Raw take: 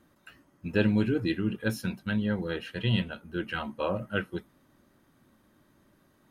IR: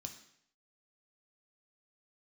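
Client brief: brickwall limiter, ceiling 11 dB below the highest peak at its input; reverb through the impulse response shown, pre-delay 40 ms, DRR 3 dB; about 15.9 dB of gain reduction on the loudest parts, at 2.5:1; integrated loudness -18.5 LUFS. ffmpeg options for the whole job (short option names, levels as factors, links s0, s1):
-filter_complex "[0:a]acompressor=threshold=0.00562:ratio=2.5,alimiter=level_in=4.47:limit=0.0631:level=0:latency=1,volume=0.224,asplit=2[s0][s1];[1:a]atrim=start_sample=2205,adelay=40[s2];[s1][s2]afir=irnorm=-1:irlink=0,volume=1.26[s3];[s0][s3]amix=inputs=2:normalize=0,volume=17.8"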